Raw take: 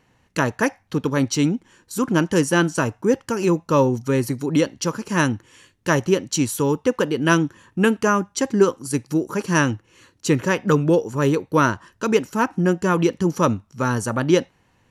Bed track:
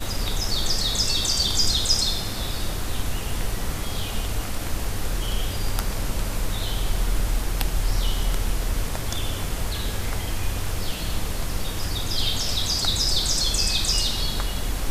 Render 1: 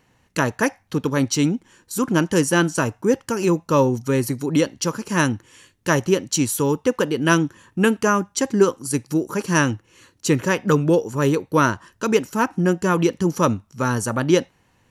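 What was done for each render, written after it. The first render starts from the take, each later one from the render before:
high-shelf EQ 7,200 Hz +5.5 dB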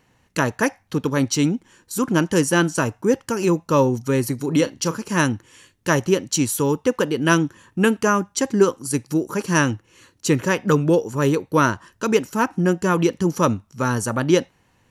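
0:04.35–0:04.96: double-tracking delay 36 ms −13.5 dB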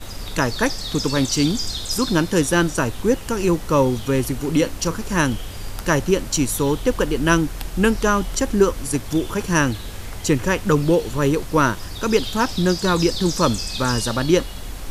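mix in bed track −5.5 dB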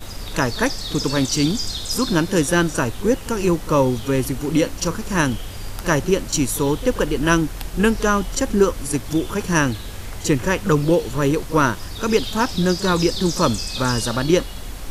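backwards echo 40 ms −17 dB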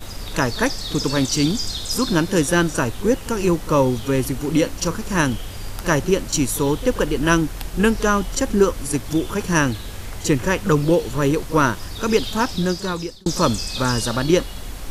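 0:12.17–0:13.26: fade out equal-power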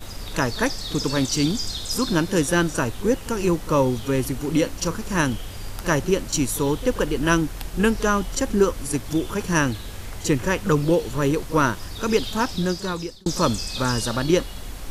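level −2.5 dB

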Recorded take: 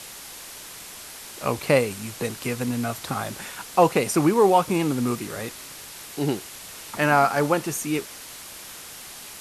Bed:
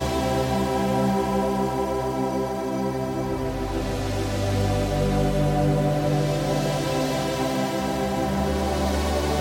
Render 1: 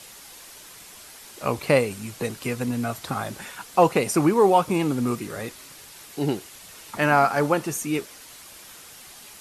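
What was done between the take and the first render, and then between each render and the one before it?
broadband denoise 6 dB, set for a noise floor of −41 dBFS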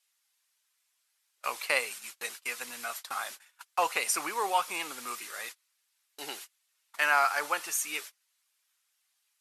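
noise gate −34 dBFS, range −31 dB
high-pass filter 1,300 Hz 12 dB per octave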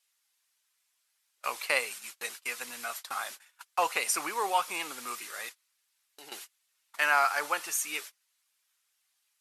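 0:05.49–0:06.32: downward compressor 3 to 1, threshold −49 dBFS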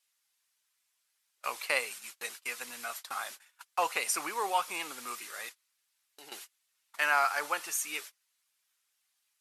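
level −2 dB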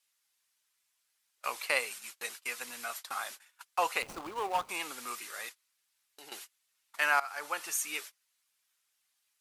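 0:04.02–0:04.69: running median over 25 samples
0:07.20–0:07.70: fade in, from −17.5 dB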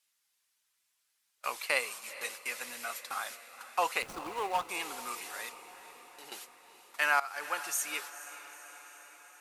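feedback delay with all-pass diffusion 458 ms, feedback 64%, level −14.5 dB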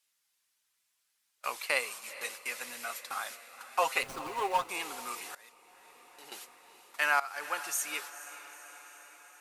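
0:03.70–0:04.64: comb filter 7.5 ms, depth 71%
0:05.35–0:06.44: fade in, from −19.5 dB

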